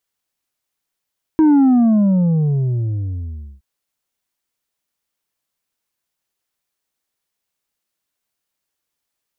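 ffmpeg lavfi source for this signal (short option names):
-f lavfi -i "aevalsrc='0.355*clip((2.22-t)/2.1,0,1)*tanh(1.68*sin(2*PI*320*2.22/log(65/320)*(exp(log(65/320)*t/2.22)-1)))/tanh(1.68)':d=2.22:s=44100"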